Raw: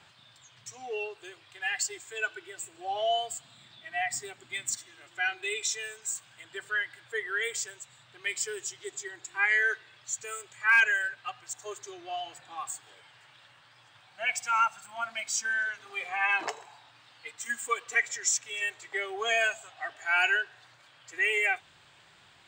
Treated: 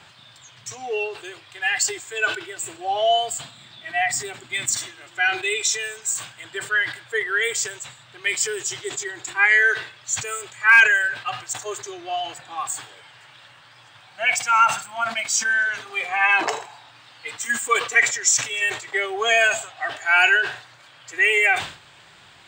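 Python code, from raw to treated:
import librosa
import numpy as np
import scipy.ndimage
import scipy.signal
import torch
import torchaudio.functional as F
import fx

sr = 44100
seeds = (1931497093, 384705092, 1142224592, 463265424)

y = fx.sustainer(x, sr, db_per_s=120.0)
y = y * 10.0 ** (9.0 / 20.0)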